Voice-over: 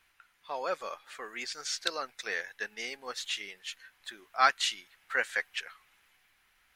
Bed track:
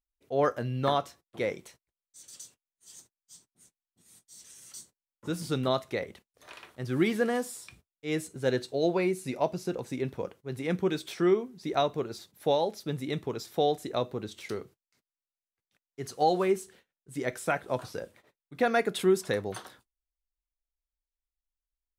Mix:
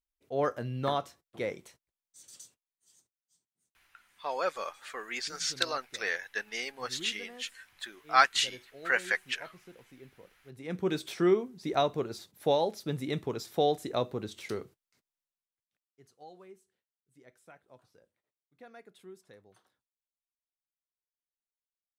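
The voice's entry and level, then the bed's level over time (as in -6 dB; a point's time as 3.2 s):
3.75 s, +2.0 dB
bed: 2.37 s -3.5 dB
3.26 s -20.5 dB
10.3 s -20.5 dB
10.92 s -0.5 dB
15.18 s -0.5 dB
16.18 s -26 dB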